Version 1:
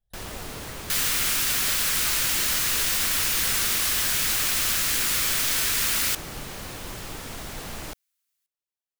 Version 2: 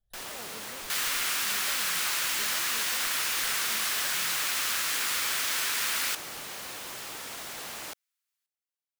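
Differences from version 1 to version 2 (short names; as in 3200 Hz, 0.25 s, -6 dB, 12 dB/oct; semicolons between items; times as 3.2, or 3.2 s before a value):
first sound: add HPF 810 Hz 6 dB/oct; second sound: add tilt -2 dB/oct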